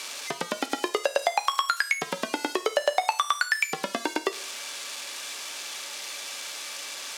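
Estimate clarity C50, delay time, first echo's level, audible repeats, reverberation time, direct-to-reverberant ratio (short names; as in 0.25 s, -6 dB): 17.0 dB, none, none, none, 0.45 s, 11.0 dB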